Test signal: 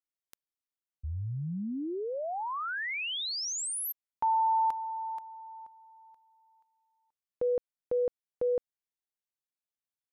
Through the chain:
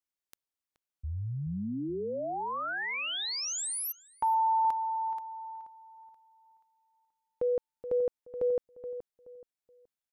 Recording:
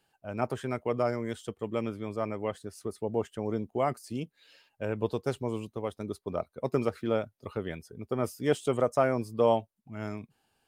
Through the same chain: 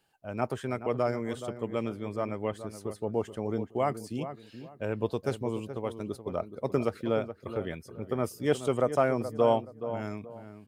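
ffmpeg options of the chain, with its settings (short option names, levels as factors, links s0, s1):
-filter_complex "[0:a]asplit=2[s0][s1];[s1]adelay=425,lowpass=f=1500:p=1,volume=0.299,asplit=2[s2][s3];[s3]adelay=425,lowpass=f=1500:p=1,volume=0.29,asplit=2[s4][s5];[s5]adelay=425,lowpass=f=1500:p=1,volume=0.29[s6];[s0][s2][s4][s6]amix=inputs=4:normalize=0"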